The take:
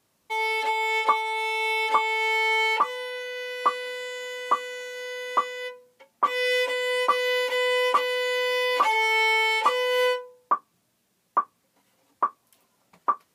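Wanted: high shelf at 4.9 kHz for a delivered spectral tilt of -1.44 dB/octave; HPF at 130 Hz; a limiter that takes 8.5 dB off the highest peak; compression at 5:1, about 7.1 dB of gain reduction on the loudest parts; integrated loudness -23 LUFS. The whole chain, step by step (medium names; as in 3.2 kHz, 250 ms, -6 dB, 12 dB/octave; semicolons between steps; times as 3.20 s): high-pass 130 Hz; treble shelf 4.9 kHz +4.5 dB; compression 5:1, threshold -24 dBFS; trim +6.5 dB; peak limiter -15.5 dBFS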